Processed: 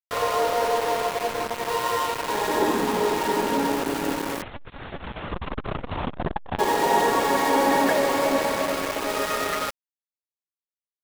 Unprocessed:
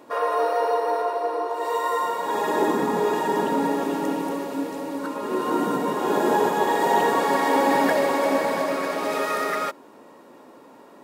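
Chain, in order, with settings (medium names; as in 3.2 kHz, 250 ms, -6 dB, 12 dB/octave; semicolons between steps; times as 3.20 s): small samples zeroed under -25 dBFS; 4.42–6.59 s: LPC vocoder at 8 kHz pitch kept; transformer saturation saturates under 330 Hz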